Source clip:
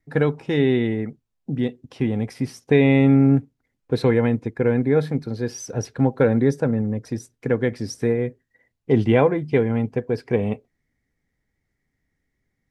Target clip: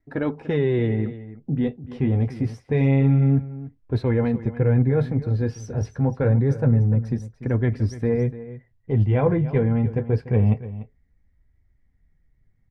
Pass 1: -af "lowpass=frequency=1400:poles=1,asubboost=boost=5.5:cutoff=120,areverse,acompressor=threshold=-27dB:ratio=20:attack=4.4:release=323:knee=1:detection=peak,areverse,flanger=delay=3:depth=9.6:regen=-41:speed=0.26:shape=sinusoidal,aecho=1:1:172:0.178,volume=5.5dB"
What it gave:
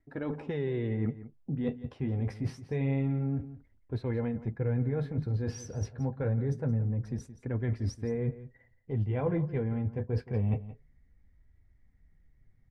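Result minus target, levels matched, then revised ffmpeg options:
downward compressor: peak gain reduction +11 dB; echo 121 ms early
-af "lowpass=frequency=1400:poles=1,asubboost=boost=5.5:cutoff=120,areverse,acompressor=threshold=-15.5dB:ratio=20:attack=4.4:release=323:knee=1:detection=peak,areverse,flanger=delay=3:depth=9.6:regen=-41:speed=0.26:shape=sinusoidal,aecho=1:1:293:0.178,volume=5.5dB"

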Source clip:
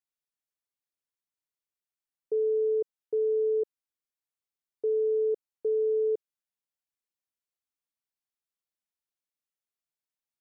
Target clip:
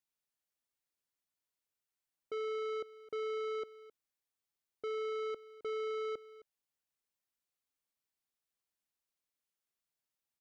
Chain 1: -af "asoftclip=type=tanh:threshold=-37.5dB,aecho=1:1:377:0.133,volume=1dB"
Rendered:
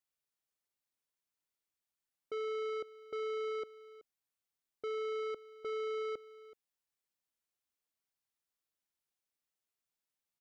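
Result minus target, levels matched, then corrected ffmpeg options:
echo 114 ms late
-af "asoftclip=type=tanh:threshold=-37.5dB,aecho=1:1:263:0.133,volume=1dB"

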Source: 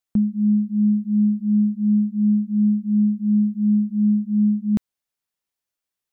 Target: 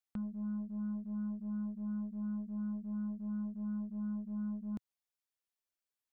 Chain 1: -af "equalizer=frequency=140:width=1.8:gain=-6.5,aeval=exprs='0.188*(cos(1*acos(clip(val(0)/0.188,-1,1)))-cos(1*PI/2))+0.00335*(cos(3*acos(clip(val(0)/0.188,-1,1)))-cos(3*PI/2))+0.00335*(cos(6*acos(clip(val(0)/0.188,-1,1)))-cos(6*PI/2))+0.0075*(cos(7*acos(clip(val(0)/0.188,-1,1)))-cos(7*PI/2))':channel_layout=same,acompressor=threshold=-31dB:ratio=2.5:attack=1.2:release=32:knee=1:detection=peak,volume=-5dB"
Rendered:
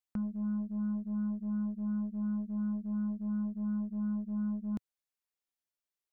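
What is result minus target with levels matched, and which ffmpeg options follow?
downward compressor: peak gain reduction −4.5 dB
-af "equalizer=frequency=140:width=1.8:gain=-6.5,aeval=exprs='0.188*(cos(1*acos(clip(val(0)/0.188,-1,1)))-cos(1*PI/2))+0.00335*(cos(3*acos(clip(val(0)/0.188,-1,1)))-cos(3*PI/2))+0.00335*(cos(6*acos(clip(val(0)/0.188,-1,1)))-cos(6*PI/2))+0.0075*(cos(7*acos(clip(val(0)/0.188,-1,1)))-cos(7*PI/2))':channel_layout=same,acompressor=threshold=-38.5dB:ratio=2.5:attack=1.2:release=32:knee=1:detection=peak,volume=-5dB"

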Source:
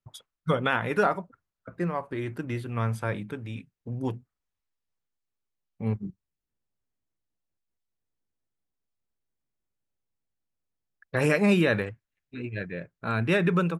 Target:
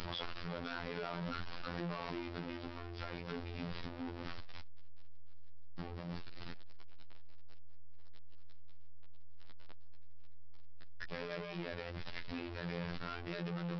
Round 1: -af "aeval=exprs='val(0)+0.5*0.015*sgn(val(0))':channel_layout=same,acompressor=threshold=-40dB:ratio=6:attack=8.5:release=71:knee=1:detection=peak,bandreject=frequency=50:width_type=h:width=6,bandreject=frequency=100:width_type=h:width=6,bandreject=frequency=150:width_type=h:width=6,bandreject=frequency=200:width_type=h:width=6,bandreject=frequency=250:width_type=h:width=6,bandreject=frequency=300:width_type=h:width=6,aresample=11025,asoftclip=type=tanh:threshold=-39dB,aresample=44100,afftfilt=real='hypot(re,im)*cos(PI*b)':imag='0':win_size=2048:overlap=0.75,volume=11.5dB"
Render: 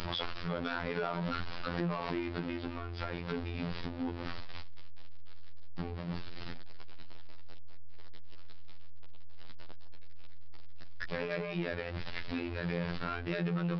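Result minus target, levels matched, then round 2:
soft clipping: distortion −5 dB
-af "aeval=exprs='val(0)+0.5*0.015*sgn(val(0))':channel_layout=same,acompressor=threshold=-40dB:ratio=6:attack=8.5:release=71:knee=1:detection=peak,bandreject=frequency=50:width_type=h:width=6,bandreject=frequency=100:width_type=h:width=6,bandreject=frequency=150:width_type=h:width=6,bandreject=frequency=200:width_type=h:width=6,bandreject=frequency=250:width_type=h:width=6,bandreject=frequency=300:width_type=h:width=6,aresample=11025,asoftclip=type=tanh:threshold=-49dB,aresample=44100,afftfilt=real='hypot(re,im)*cos(PI*b)':imag='0':win_size=2048:overlap=0.75,volume=11.5dB"

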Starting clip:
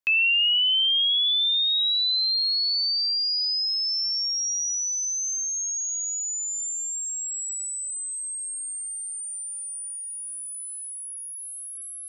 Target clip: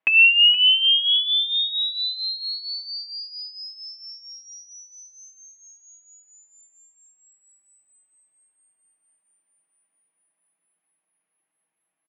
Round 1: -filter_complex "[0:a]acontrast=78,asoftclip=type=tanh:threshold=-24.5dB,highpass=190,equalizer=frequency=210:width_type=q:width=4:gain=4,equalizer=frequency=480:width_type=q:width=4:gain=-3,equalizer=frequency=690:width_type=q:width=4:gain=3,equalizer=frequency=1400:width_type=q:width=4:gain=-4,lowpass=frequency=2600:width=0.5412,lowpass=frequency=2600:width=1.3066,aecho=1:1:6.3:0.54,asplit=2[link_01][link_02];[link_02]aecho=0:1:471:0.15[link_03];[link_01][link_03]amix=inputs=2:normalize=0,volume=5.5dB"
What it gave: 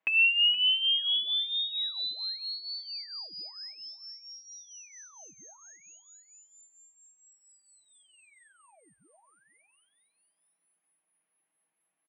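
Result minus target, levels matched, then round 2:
soft clipping: distortion +13 dB
-filter_complex "[0:a]acontrast=78,asoftclip=type=tanh:threshold=-12.5dB,highpass=190,equalizer=frequency=210:width_type=q:width=4:gain=4,equalizer=frequency=480:width_type=q:width=4:gain=-3,equalizer=frequency=690:width_type=q:width=4:gain=3,equalizer=frequency=1400:width_type=q:width=4:gain=-4,lowpass=frequency=2600:width=0.5412,lowpass=frequency=2600:width=1.3066,aecho=1:1:6.3:0.54,asplit=2[link_01][link_02];[link_02]aecho=0:1:471:0.15[link_03];[link_01][link_03]amix=inputs=2:normalize=0,volume=5.5dB"

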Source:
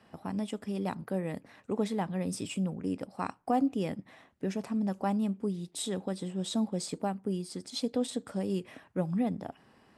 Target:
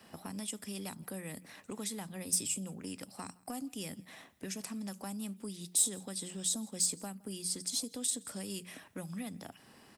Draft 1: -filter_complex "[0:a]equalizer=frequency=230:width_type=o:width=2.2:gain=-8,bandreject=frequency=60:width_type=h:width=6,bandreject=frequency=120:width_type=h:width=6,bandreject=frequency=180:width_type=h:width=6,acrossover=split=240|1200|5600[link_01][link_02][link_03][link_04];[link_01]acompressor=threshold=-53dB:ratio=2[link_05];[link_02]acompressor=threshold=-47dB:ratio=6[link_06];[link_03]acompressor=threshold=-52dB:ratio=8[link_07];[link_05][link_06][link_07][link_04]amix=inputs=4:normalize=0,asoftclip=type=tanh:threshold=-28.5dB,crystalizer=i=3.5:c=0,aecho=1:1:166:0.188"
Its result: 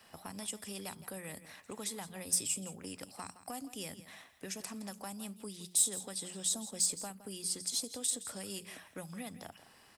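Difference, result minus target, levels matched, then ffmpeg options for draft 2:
echo-to-direct +10.5 dB; 250 Hz band −4.5 dB
-filter_complex "[0:a]equalizer=frequency=230:width_type=o:width=2.2:gain=2.5,bandreject=frequency=60:width_type=h:width=6,bandreject=frequency=120:width_type=h:width=6,bandreject=frequency=180:width_type=h:width=6,acrossover=split=240|1200|5600[link_01][link_02][link_03][link_04];[link_01]acompressor=threshold=-53dB:ratio=2[link_05];[link_02]acompressor=threshold=-47dB:ratio=6[link_06];[link_03]acompressor=threshold=-52dB:ratio=8[link_07];[link_05][link_06][link_07][link_04]amix=inputs=4:normalize=0,asoftclip=type=tanh:threshold=-28.5dB,crystalizer=i=3.5:c=0,aecho=1:1:166:0.0562"

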